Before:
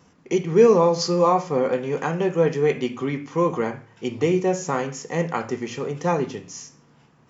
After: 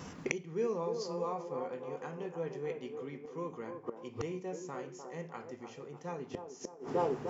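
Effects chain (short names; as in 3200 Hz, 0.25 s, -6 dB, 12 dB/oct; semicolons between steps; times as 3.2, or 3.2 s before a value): band-limited delay 0.301 s, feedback 46%, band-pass 550 Hz, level -5 dB; flipped gate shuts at -23 dBFS, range -29 dB; gain +9.5 dB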